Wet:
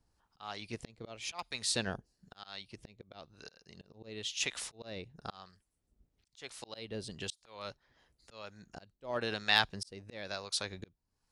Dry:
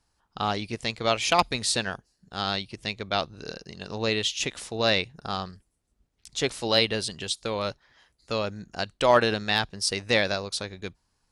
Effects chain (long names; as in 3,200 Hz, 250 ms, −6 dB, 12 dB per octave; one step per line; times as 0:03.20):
volume swells 637 ms
two-band tremolo in antiphase 1 Hz, depth 70%, crossover 650 Hz